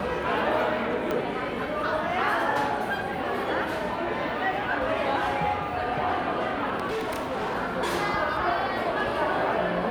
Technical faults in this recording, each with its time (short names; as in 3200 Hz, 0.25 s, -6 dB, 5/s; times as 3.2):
1.11 pop -15 dBFS
6.89–7.55 clipped -26 dBFS